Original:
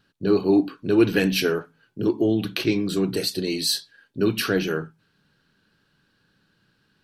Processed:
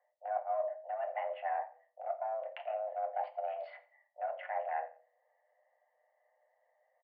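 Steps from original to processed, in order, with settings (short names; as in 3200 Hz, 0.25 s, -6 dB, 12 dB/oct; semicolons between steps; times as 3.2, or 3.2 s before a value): Wiener smoothing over 41 samples; treble ducked by the level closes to 1600 Hz, closed at -20.5 dBFS; reverse; compressor 10:1, threshold -32 dBFS, peak gain reduction 19 dB; reverse; feedback echo 87 ms, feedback 24%, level -20 dB; on a send at -4.5 dB: reverb, pre-delay 5 ms; on the sum: mistuned SSB +330 Hz 290–2100 Hz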